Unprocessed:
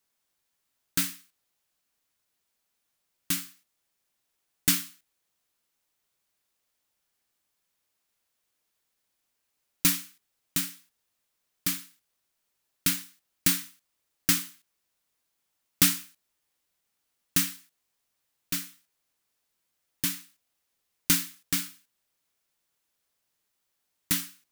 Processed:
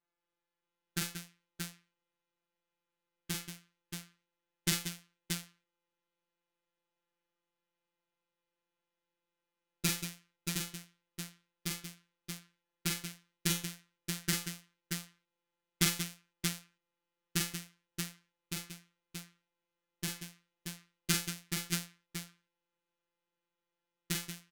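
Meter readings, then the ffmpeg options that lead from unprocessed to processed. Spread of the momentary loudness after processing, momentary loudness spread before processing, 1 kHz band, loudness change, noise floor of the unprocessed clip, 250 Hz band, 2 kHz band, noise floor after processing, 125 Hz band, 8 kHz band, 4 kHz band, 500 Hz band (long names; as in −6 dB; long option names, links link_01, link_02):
16 LU, 11 LU, −3.5 dB, −10.5 dB, −79 dBFS, −4.0 dB, −4.0 dB, below −85 dBFS, +0.5 dB, −7.0 dB, −5.0 dB, +3.5 dB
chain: -af "afftfilt=real='hypot(re,im)*cos(PI*b)':imag='0':win_size=1024:overlap=0.75,adynamicsmooth=sensitivity=6.5:basefreq=2300,aecho=1:1:43|182|629:0.631|0.355|0.562"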